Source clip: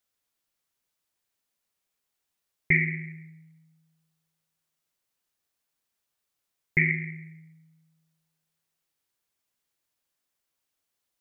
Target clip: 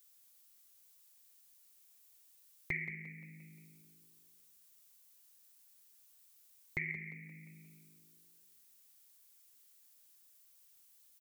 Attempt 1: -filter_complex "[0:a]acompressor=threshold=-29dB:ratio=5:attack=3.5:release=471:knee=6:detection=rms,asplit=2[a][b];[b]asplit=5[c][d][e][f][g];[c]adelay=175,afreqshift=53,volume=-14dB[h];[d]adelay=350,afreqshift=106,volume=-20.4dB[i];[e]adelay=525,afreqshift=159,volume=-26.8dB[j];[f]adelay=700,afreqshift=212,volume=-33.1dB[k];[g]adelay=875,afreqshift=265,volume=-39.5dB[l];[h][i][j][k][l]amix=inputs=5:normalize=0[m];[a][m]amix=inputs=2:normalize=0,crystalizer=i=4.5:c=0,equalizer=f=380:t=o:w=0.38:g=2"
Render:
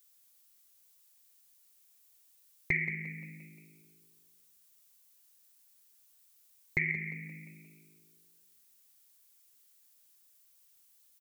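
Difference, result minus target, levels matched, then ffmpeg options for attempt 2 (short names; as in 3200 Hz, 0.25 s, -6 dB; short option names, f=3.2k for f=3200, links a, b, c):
compressor: peak gain reduction -7.5 dB
-filter_complex "[0:a]acompressor=threshold=-38.5dB:ratio=5:attack=3.5:release=471:knee=6:detection=rms,asplit=2[a][b];[b]asplit=5[c][d][e][f][g];[c]adelay=175,afreqshift=53,volume=-14dB[h];[d]adelay=350,afreqshift=106,volume=-20.4dB[i];[e]adelay=525,afreqshift=159,volume=-26.8dB[j];[f]adelay=700,afreqshift=212,volume=-33.1dB[k];[g]adelay=875,afreqshift=265,volume=-39.5dB[l];[h][i][j][k][l]amix=inputs=5:normalize=0[m];[a][m]amix=inputs=2:normalize=0,crystalizer=i=4.5:c=0,equalizer=f=380:t=o:w=0.38:g=2"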